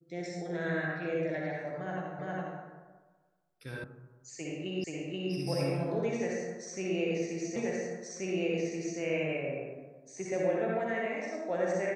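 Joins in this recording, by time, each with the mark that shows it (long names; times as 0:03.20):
0:02.19: the same again, the last 0.41 s
0:03.84: cut off before it has died away
0:04.84: the same again, the last 0.48 s
0:07.56: the same again, the last 1.43 s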